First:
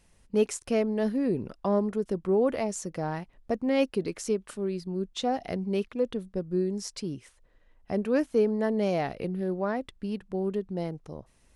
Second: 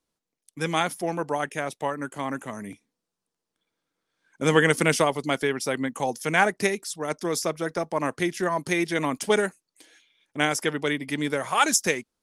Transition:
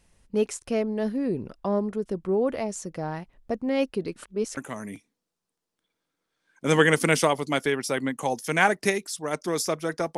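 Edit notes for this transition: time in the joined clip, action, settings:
first
4.16–4.57 reverse
4.57 switch to second from 2.34 s

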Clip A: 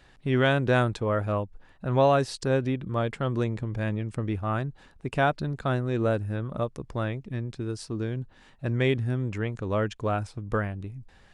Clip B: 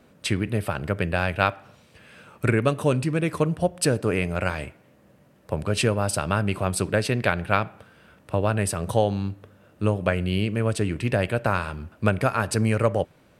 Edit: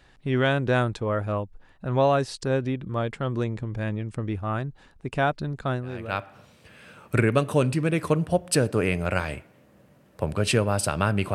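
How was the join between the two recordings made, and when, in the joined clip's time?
clip A
6.04 switch to clip B from 1.34 s, crossfade 0.70 s quadratic

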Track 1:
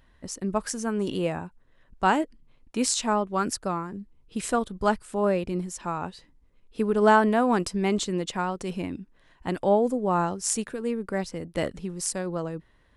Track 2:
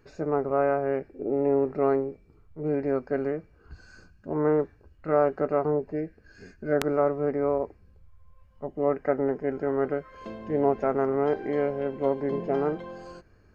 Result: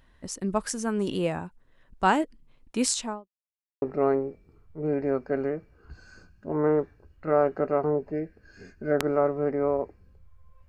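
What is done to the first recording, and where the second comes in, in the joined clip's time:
track 1
2.88–3.29 studio fade out
3.29–3.82 mute
3.82 switch to track 2 from 1.63 s

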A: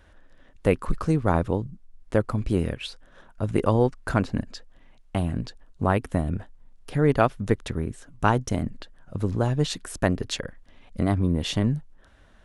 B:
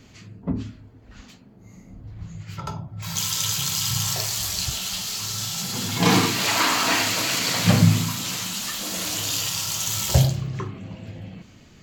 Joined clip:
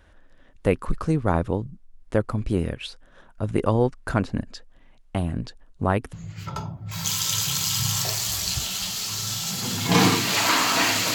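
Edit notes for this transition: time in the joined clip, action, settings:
A
6.13 switch to B from 2.24 s

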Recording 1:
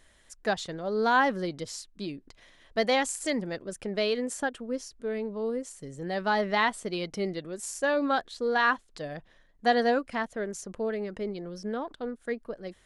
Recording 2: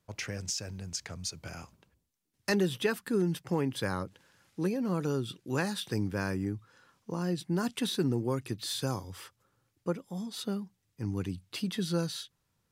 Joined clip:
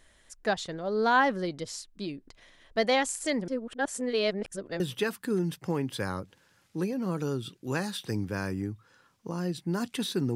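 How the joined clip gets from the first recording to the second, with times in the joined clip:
recording 1
3.48–4.8 reverse
4.8 switch to recording 2 from 2.63 s

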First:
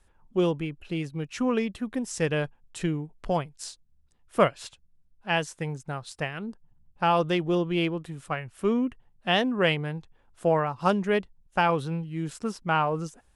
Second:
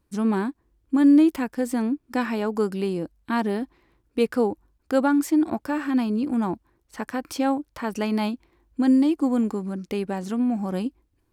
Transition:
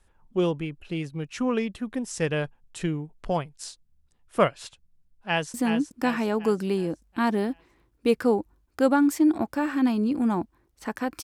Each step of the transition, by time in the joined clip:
first
5.27–5.54 echo throw 0.37 s, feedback 50%, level -7 dB
5.54 switch to second from 1.66 s

